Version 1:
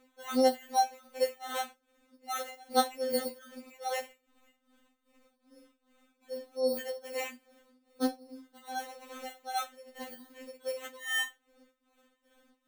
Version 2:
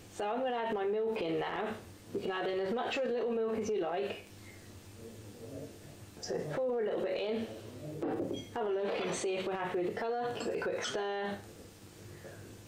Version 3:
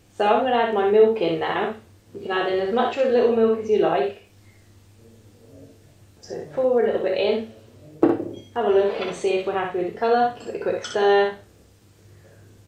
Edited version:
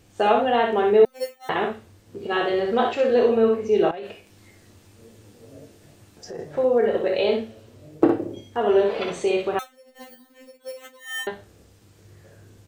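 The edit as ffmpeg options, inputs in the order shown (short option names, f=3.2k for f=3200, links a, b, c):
-filter_complex "[0:a]asplit=2[a][b];[2:a]asplit=4[c][d][e][f];[c]atrim=end=1.052[g];[a]atrim=start=1.048:end=1.492[h];[d]atrim=start=1.488:end=3.912[i];[1:a]atrim=start=3.908:end=6.392[j];[e]atrim=start=6.388:end=9.592[k];[b]atrim=start=9.588:end=11.272[l];[f]atrim=start=11.268[m];[g][h]acrossfade=d=0.004:c1=hsin:c2=hsin[n];[n][i]acrossfade=d=0.004:c1=hsin:c2=hsin[o];[o][j]acrossfade=d=0.004:c1=hsin:c2=hsin[p];[p][k]acrossfade=d=0.004:c1=hsin:c2=hsin[q];[q][l]acrossfade=d=0.004:c1=hsin:c2=hsin[r];[r][m]acrossfade=d=0.004:c1=hsin:c2=hsin"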